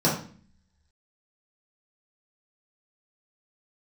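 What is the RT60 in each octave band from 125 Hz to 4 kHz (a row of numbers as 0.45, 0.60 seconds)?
0.75, 0.80, 0.45, 0.40, 0.45, 0.40 seconds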